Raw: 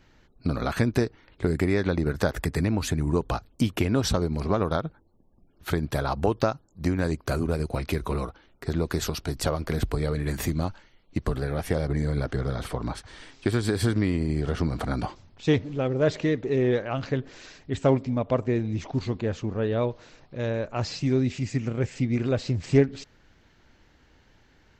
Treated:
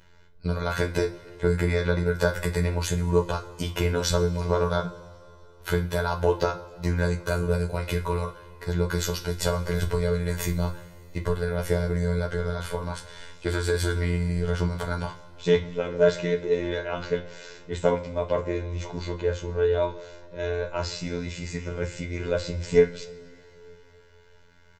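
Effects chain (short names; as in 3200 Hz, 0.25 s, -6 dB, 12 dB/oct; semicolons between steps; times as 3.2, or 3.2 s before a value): comb 2 ms, depth 80%; robotiser 87.2 Hz; two-slope reverb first 0.29 s, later 3.1 s, from -21 dB, DRR 4 dB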